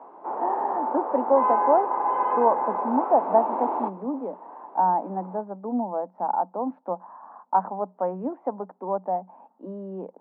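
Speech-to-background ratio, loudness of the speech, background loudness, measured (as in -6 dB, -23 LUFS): -0.5 dB, -27.0 LUFS, -26.5 LUFS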